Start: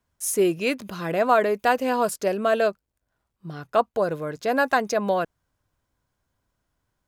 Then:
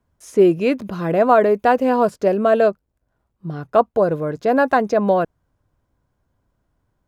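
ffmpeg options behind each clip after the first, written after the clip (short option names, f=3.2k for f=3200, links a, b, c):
-filter_complex "[0:a]tiltshelf=f=1.4k:g=6.5,acrossover=split=6100[a][b];[b]acompressor=threshold=-52dB:ratio=4:attack=1:release=60[c];[a][c]amix=inputs=2:normalize=0,volume=2dB"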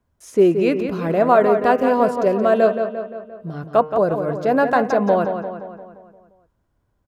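-filter_complex "[0:a]bandreject=f=153.8:t=h:w=4,bandreject=f=307.6:t=h:w=4,bandreject=f=461.4:t=h:w=4,bandreject=f=615.2:t=h:w=4,bandreject=f=769:t=h:w=4,bandreject=f=922.8:t=h:w=4,bandreject=f=1.0766k:t=h:w=4,bandreject=f=1.2304k:t=h:w=4,bandreject=f=1.3842k:t=h:w=4,bandreject=f=1.538k:t=h:w=4,bandreject=f=1.6918k:t=h:w=4,bandreject=f=1.8456k:t=h:w=4,bandreject=f=1.9994k:t=h:w=4,bandreject=f=2.1532k:t=h:w=4,bandreject=f=2.307k:t=h:w=4,bandreject=f=2.4608k:t=h:w=4,bandreject=f=2.6146k:t=h:w=4,bandreject=f=2.7684k:t=h:w=4,bandreject=f=2.9222k:t=h:w=4,asplit=2[a][b];[b]adelay=174,lowpass=f=4k:p=1,volume=-7.5dB,asplit=2[c][d];[d]adelay=174,lowpass=f=4k:p=1,volume=0.55,asplit=2[e][f];[f]adelay=174,lowpass=f=4k:p=1,volume=0.55,asplit=2[g][h];[h]adelay=174,lowpass=f=4k:p=1,volume=0.55,asplit=2[i][j];[j]adelay=174,lowpass=f=4k:p=1,volume=0.55,asplit=2[k][l];[l]adelay=174,lowpass=f=4k:p=1,volume=0.55,asplit=2[m][n];[n]adelay=174,lowpass=f=4k:p=1,volume=0.55[o];[c][e][g][i][k][m][o]amix=inputs=7:normalize=0[p];[a][p]amix=inputs=2:normalize=0,volume=-1dB"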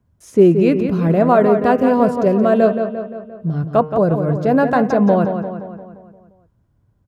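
-af "equalizer=f=120:t=o:w=2.2:g=13.5,volume=-1dB"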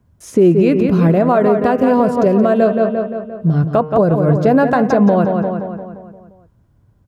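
-af "alimiter=limit=-10dB:level=0:latency=1:release=224,volume=6.5dB"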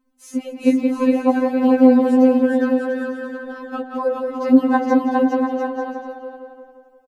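-filter_complex "[0:a]asplit=2[a][b];[b]aecho=0:1:410|697|897.9|1039|1137:0.631|0.398|0.251|0.158|0.1[c];[a][c]amix=inputs=2:normalize=0,afftfilt=real='re*3.46*eq(mod(b,12),0)':imag='im*3.46*eq(mod(b,12),0)':win_size=2048:overlap=0.75,volume=-3dB"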